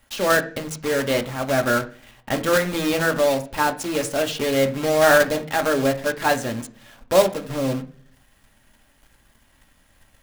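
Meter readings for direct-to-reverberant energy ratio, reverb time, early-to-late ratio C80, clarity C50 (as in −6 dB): 4.5 dB, 0.45 s, 19.5 dB, 15.0 dB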